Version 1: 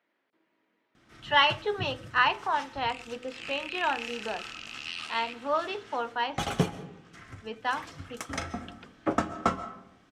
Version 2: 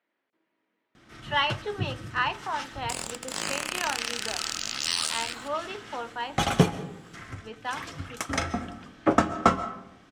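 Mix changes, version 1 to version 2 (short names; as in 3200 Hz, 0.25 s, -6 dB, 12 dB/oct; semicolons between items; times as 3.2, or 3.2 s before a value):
speech -3.5 dB; first sound +6.0 dB; second sound: remove band-pass 2600 Hz, Q 5.3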